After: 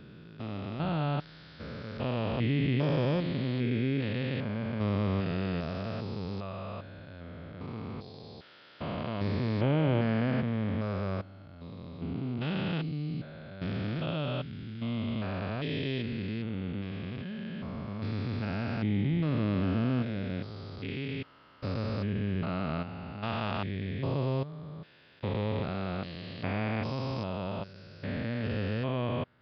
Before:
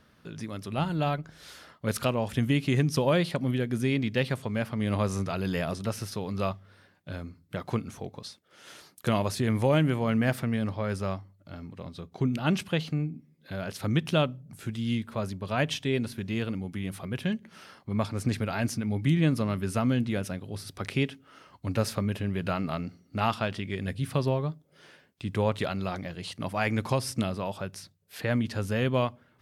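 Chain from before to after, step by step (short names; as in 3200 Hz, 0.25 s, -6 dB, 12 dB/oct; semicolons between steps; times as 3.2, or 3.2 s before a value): stepped spectrum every 0.4 s; downsampling 11025 Hz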